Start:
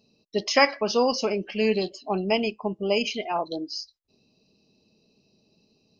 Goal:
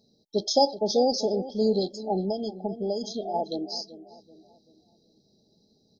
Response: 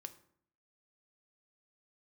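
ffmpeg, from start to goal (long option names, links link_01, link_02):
-filter_complex "[0:a]asplit=2[link_01][link_02];[link_02]adelay=384,lowpass=frequency=1100:poles=1,volume=-14dB,asplit=2[link_03][link_04];[link_04]adelay=384,lowpass=frequency=1100:poles=1,volume=0.44,asplit=2[link_05][link_06];[link_06]adelay=384,lowpass=frequency=1100:poles=1,volume=0.44,asplit=2[link_07][link_08];[link_08]adelay=384,lowpass=frequency=1100:poles=1,volume=0.44[link_09];[link_01][link_03][link_05][link_07][link_09]amix=inputs=5:normalize=0,asettb=1/sr,asplit=3[link_10][link_11][link_12];[link_10]atrim=end=2.284[link_13];[link_11]atrim=start=2.28:end=3.34,asetpts=PTS-STARTPTS,afade=type=in:duration=0.004:curve=qsin,afade=type=out:start_time=1.056:duration=0.004:curve=qsin,acompressor=threshold=-25dB:ratio=6[link_14];[link_12]atrim=start=3.336[link_15];[link_13][link_14]acrossfade=duration=0.004:curve1=hsin:curve2=qsin[link_16];[link_16][link_15]acrossfade=duration=0.004:curve1=qsin:curve2=hsin,afftfilt=real='re*(1-between(b*sr/4096,870,3200))':imag='im*(1-between(b*sr/4096,870,3200))':win_size=4096:overlap=0.75"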